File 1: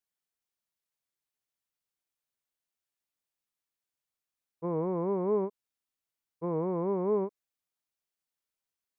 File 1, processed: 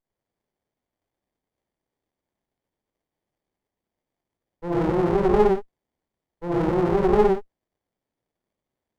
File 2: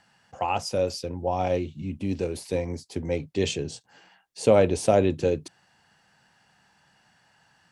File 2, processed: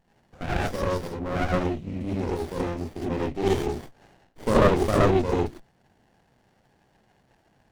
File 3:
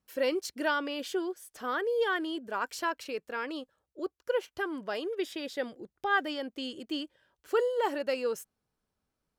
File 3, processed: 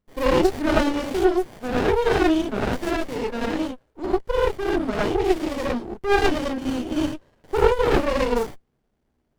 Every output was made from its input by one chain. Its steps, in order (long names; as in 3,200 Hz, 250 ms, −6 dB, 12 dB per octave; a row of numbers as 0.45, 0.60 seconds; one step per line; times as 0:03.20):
reverb whose tail is shaped and stops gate 130 ms rising, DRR −7.5 dB
windowed peak hold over 33 samples
normalise the peak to −6 dBFS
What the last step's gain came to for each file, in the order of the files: +2.5, −4.5, +5.0 decibels